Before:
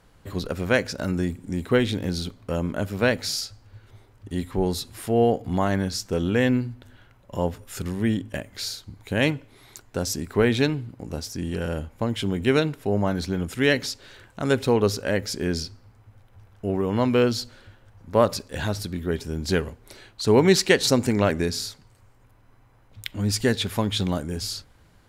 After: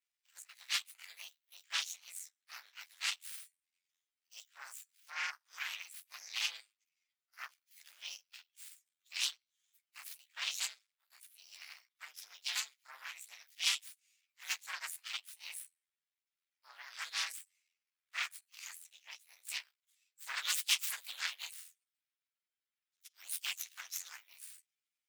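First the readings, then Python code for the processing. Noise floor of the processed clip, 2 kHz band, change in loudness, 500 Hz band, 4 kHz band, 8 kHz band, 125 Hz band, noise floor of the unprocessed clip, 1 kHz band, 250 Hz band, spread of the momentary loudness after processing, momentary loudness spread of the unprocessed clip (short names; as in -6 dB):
under -85 dBFS, -12.5 dB, -15.0 dB, under -40 dB, -8.5 dB, -8.0 dB, under -40 dB, -56 dBFS, -20.5 dB, under -40 dB, 17 LU, 12 LU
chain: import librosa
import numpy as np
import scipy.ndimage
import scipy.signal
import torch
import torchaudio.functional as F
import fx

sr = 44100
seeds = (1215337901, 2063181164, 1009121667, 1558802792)

y = fx.partial_stretch(x, sr, pct=122)
y = fx.cheby_harmonics(y, sr, harmonics=(3, 5, 6, 7), levels_db=(-26, -26, -6, -18), full_scale_db=-7.0)
y = scipy.signal.sosfilt(scipy.signal.bessel(4, 2700.0, 'highpass', norm='mag', fs=sr, output='sos'), y)
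y = F.gain(torch.from_numpy(y), -7.5).numpy()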